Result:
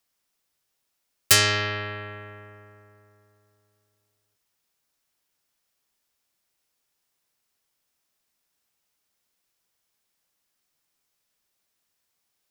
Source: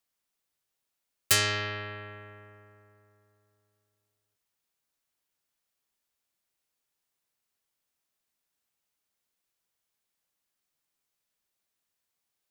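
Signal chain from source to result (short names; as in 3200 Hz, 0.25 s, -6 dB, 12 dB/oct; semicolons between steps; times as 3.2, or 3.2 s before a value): bell 5300 Hz +3 dB 0.24 oct; gain +6 dB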